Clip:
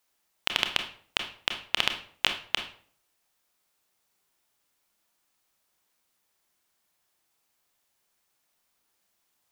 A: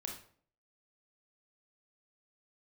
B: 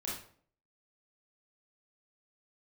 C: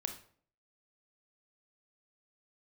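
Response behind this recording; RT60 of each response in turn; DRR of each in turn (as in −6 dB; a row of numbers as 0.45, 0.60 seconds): C; 0.55, 0.55, 0.55 seconds; 0.5, −6.0, 5.5 decibels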